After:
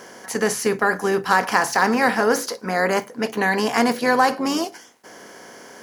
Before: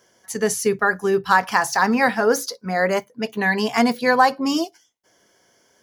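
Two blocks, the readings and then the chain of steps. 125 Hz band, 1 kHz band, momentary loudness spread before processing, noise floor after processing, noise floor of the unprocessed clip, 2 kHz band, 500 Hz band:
-0.5 dB, -0.5 dB, 8 LU, -45 dBFS, -61 dBFS, -0.5 dB, -0.5 dB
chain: spectral levelling over time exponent 0.6; trim -3.5 dB

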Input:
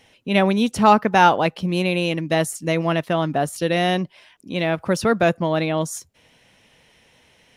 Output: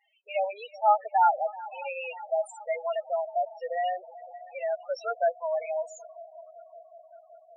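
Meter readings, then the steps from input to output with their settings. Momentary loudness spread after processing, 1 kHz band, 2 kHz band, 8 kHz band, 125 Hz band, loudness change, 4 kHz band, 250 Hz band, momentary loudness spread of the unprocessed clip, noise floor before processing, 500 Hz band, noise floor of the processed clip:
21 LU, -6.0 dB, -15.0 dB, under -15 dB, under -40 dB, -9.5 dB, -21.0 dB, under -40 dB, 9 LU, -57 dBFS, -8.0 dB, -58 dBFS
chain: Chebyshev band-pass 600–8200 Hz, order 3; multi-head delay 189 ms, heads second and third, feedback 74%, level -19 dB; loudest bins only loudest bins 4; trim -4 dB

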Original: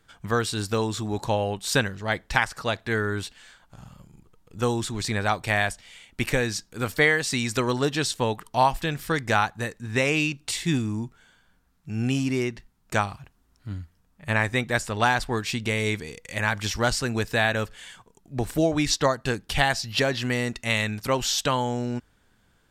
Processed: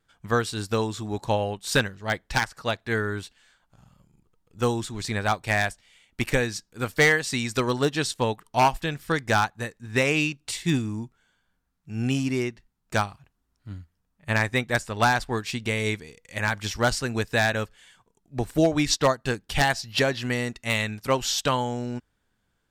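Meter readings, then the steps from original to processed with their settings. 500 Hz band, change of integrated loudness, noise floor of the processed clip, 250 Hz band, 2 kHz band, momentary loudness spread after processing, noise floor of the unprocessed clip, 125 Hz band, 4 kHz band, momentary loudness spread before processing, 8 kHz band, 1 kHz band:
+0.5 dB, 0.0 dB, -74 dBFS, -0.5 dB, 0.0 dB, 11 LU, -64 dBFS, -0.5 dB, -1.0 dB, 10 LU, -1.0 dB, 0.0 dB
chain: vibrato 0.78 Hz 8.9 cents; wavefolder -12.5 dBFS; upward expansion 1.5:1, over -43 dBFS; trim +2.5 dB

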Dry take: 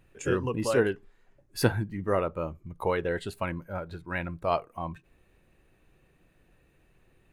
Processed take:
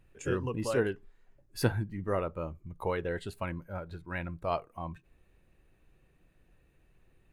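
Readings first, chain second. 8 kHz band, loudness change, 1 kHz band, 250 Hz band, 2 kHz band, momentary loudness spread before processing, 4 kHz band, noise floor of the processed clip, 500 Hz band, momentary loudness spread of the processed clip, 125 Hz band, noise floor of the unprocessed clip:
-5.0 dB, -4.0 dB, -5.0 dB, -4.0 dB, -5.0 dB, 12 LU, -5.0 dB, -68 dBFS, -4.5 dB, 11 LU, -2.5 dB, -65 dBFS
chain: bass shelf 99 Hz +6.5 dB; trim -5 dB

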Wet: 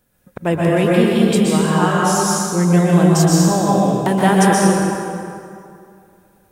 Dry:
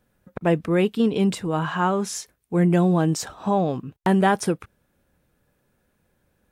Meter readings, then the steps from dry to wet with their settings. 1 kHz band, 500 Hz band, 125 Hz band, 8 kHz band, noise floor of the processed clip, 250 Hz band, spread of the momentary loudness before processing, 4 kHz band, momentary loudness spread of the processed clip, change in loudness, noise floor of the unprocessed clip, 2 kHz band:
+7.5 dB, +7.0 dB, +8.5 dB, +13.0 dB, -57 dBFS, +7.5 dB, 8 LU, +10.0 dB, 10 LU, +7.5 dB, -69 dBFS, +8.0 dB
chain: treble shelf 5.5 kHz +10.5 dB; plate-style reverb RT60 2.5 s, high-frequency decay 0.65×, pre-delay 110 ms, DRR -5 dB; trim +1 dB

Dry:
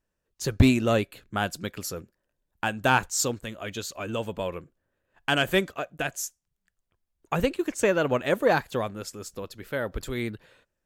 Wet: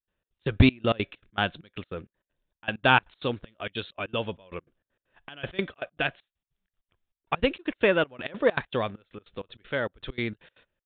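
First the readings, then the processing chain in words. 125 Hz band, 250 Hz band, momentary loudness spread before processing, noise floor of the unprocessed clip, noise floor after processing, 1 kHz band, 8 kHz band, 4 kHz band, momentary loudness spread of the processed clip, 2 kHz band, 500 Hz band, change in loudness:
-1.0 dB, -2.0 dB, 13 LU, -82 dBFS, under -85 dBFS, -1.0 dB, under -40 dB, 0.0 dB, 20 LU, +0.5 dB, -1.5 dB, -0.5 dB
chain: trance gate ".xx.x.xxx..x" 196 bpm -24 dB; resampled via 8 kHz; treble shelf 3.1 kHz +11.5 dB

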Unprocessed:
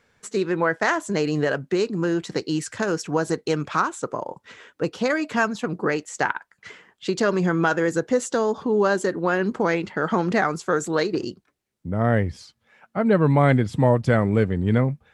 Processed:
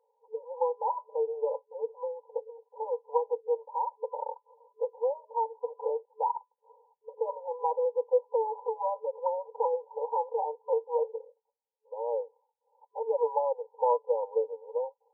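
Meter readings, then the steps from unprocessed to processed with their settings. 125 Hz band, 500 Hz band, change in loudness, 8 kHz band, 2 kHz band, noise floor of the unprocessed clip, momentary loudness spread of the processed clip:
under -40 dB, -6.5 dB, -9.0 dB, under -40 dB, under -40 dB, -72 dBFS, 11 LU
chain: Butterworth band-stop 670 Hz, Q 2.4; tilt EQ +4 dB/octave; FFT band-pass 440–1000 Hz; trim +2 dB

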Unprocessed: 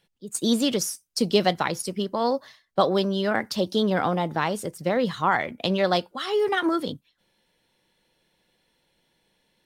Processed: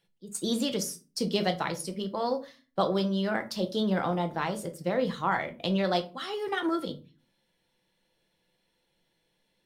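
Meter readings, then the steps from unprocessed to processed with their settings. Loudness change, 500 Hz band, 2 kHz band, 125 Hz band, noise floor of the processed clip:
-5.5 dB, -6.0 dB, -6.0 dB, -3.0 dB, -75 dBFS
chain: simulated room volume 160 m³, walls furnished, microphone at 0.75 m; trim -6.5 dB

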